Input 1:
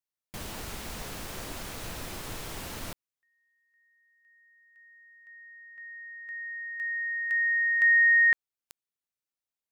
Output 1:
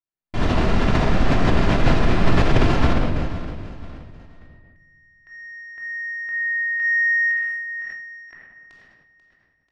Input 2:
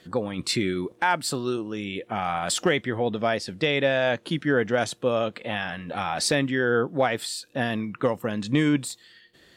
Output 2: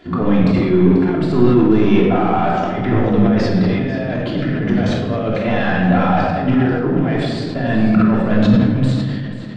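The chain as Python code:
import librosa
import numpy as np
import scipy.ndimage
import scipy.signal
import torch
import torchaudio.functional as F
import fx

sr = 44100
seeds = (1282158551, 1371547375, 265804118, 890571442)

p1 = fx.high_shelf(x, sr, hz=3400.0, db=8.0)
p2 = fx.over_compress(p1, sr, threshold_db=-29.0, ratio=-0.5)
p3 = fx.leveller(p2, sr, passes=3)
p4 = fx.spacing_loss(p3, sr, db_at_10k=41)
p5 = p4 + fx.echo_feedback(p4, sr, ms=488, feedback_pct=34, wet_db=-13.5, dry=0)
p6 = fx.room_shoebox(p5, sr, seeds[0], volume_m3=1300.0, walls='mixed', distance_m=3.1)
p7 = fx.sustainer(p6, sr, db_per_s=31.0)
y = p7 * 10.0 ** (-1.0 / 20.0)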